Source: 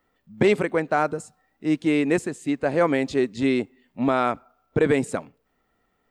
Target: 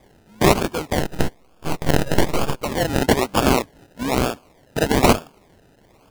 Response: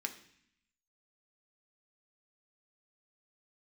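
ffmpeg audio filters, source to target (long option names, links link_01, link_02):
-filter_complex "[0:a]aexciter=amount=15.6:drive=8.7:freq=2700,acrusher=samples=31:mix=1:aa=0.000001:lfo=1:lforange=18.6:lforate=1.1,asettb=1/sr,asplit=3[link_01][link_02][link_03];[link_01]atrim=end=1.014[link_04];[link_02]atrim=start=1.01:end=2.63,asetpts=PTS-STARTPTS,afade=type=in:duration=0.004:curve=qsin,afade=type=out:start_time=1.616:duration=0.004:curve=qsin,aeval=exprs='abs(val(0))':channel_layout=same[link_05];[link_03]atrim=start=2.626[link_06];[link_04][link_05]acrossfade=duration=0.004:curve1=hsin:curve2=qsin[link_07];[link_07][link_06]acrossfade=duration=0.004:curve1=qsin:curve2=hsin,volume=-3.5dB"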